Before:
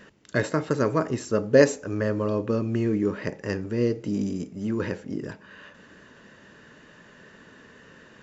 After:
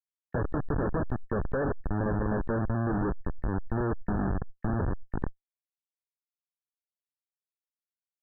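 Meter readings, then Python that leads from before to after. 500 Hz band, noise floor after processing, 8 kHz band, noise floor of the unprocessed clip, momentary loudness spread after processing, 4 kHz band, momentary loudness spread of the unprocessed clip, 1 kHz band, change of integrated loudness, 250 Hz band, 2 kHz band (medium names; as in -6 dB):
-9.5 dB, under -85 dBFS, no reading, -52 dBFS, 6 LU, under -40 dB, 12 LU, -0.5 dB, -6.0 dB, -5.5 dB, -7.5 dB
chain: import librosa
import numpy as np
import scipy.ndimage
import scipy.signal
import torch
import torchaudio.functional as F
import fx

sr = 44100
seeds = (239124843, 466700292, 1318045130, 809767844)

y = fx.schmitt(x, sr, flips_db=-24.5)
y = fx.brickwall_lowpass(y, sr, high_hz=1800.0)
y = fx.pre_swell(y, sr, db_per_s=31.0)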